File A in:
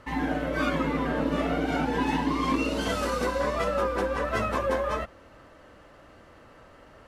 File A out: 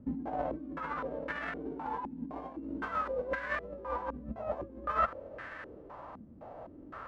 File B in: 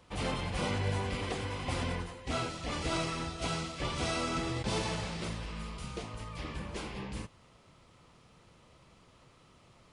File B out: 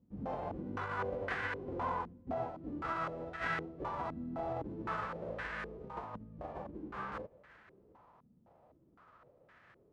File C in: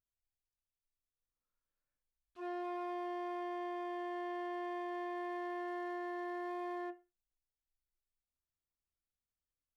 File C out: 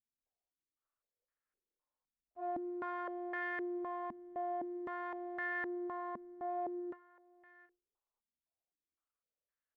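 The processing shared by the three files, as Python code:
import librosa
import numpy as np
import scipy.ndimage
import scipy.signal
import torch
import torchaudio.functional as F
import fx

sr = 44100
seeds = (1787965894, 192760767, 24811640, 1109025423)

p1 = fx.envelope_flatten(x, sr, power=0.3)
p2 = fx.over_compress(p1, sr, threshold_db=-33.0, ratio=-0.5)
p3 = fx.highpass(p2, sr, hz=40.0, slope=6)
p4 = p3 + fx.echo_single(p3, sr, ms=753, db=-23.0, dry=0)
p5 = fx.filter_held_lowpass(p4, sr, hz=3.9, low_hz=230.0, high_hz=1700.0)
y = p5 * librosa.db_to_amplitude(-3.5)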